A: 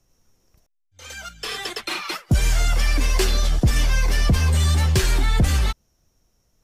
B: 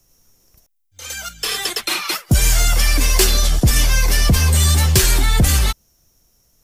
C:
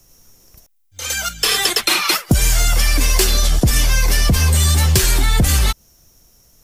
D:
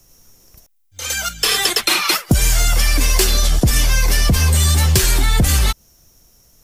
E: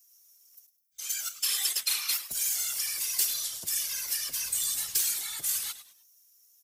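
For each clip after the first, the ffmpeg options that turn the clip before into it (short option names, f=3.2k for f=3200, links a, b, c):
-af "aemphasis=mode=production:type=50kf,volume=3.5dB"
-af "acompressor=threshold=-18dB:ratio=6,volume=7dB"
-af anull
-filter_complex "[0:a]aderivative,asplit=4[a][b][c][d];[b]adelay=103,afreqshift=-120,volume=-14dB[e];[c]adelay=206,afreqshift=-240,volume=-23.9dB[f];[d]adelay=309,afreqshift=-360,volume=-33.8dB[g];[a][e][f][g]amix=inputs=4:normalize=0,afftfilt=real='hypot(re,im)*cos(2*PI*random(0))':imag='hypot(re,im)*sin(2*PI*random(1))':win_size=512:overlap=0.75,volume=-3dB"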